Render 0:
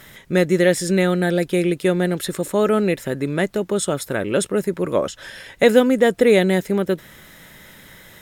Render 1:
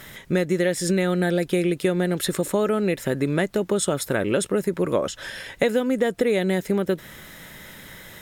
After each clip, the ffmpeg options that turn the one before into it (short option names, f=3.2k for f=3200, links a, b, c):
-af "acompressor=threshold=-20dB:ratio=6,volume=2dB"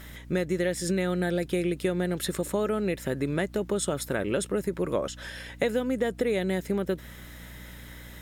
-af "aeval=exprs='val(0)+0.0112*(sin(2*PI*60*n/s)+sin(2*PI*2*60*n/s)/2+sin(2*PI*3*60*n/s)/3+sin(2*PI*4*60*n/s)/4+sin(2*PI*5*60*n/s)/5)':c=same,volume=-5.5dB"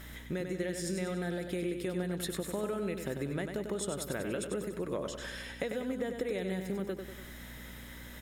-af "acompressor=threshold=-32dB:ratio=2.5,aecho=1:1:96|192|288|384|480|576:0.473|0.241|0.123|0.0628|0.032|0.0163,volume=-3dB"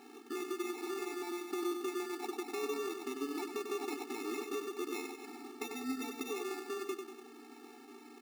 -af "acrusher=samples=28:mix=1:aa=0.000001,afftfilt=real='re*eq(mod(floor(b*sr/1024/230),2),1)':imag='im*eq(mod(floor(b*sr/1024/230),2),1)':win_size=1024:overlap=0.75"